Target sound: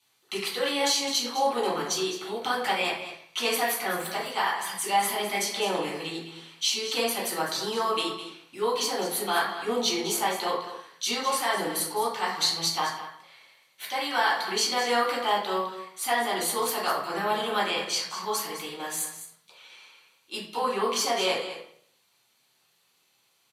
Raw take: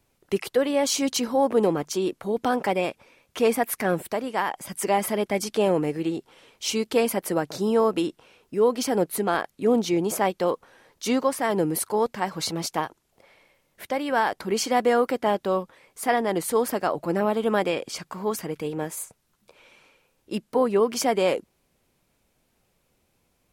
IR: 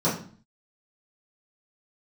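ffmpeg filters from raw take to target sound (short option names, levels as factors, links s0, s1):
-filter_complex "[0:a]aresample=32000,aresample=44100,acrossover=split=1300[s0][s1];[s0]aderivative[s2];[s1]alimiter=limit=0.0891:level=0:latency=1:release=315[s3];[s2][s3]amix=inputs=2:normalize=0,aecho=1:1:207:0.266[s4];[1:a]atrim=start_sample=2205,asetrate=33075,aresample=44100[s5];[s4][s5]afir=irnorm=-1:irlink=0,volume=0.668"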